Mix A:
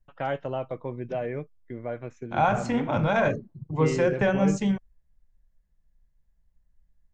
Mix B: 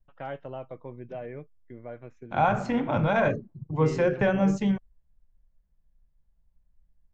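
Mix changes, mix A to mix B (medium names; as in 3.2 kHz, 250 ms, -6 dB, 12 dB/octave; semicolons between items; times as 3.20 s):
first voice -7.0 dB; master: add distance through air 95 m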